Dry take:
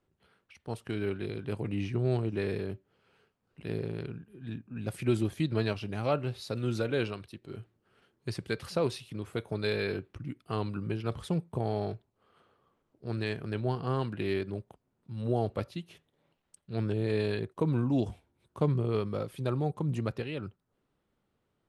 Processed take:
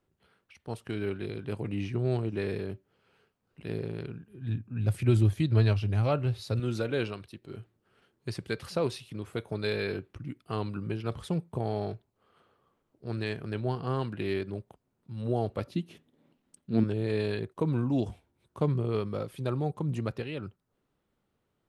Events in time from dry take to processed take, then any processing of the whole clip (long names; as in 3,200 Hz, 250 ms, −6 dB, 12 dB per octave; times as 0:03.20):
0:04.31–0:06.60: parametric band 100 Hz +13 dB 0.7 octaves
0:15.67–0:16.84: parametric band 250 Hz +14.5 dB 1 octave